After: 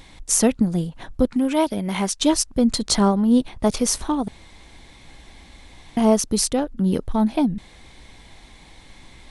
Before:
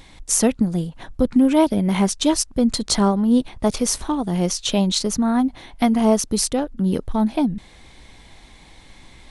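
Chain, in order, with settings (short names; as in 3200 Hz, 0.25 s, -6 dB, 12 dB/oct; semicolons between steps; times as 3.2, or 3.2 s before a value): 1.25–2.21 low shelf 490 Hz -7.5 dB; 4.28–5.97 room tone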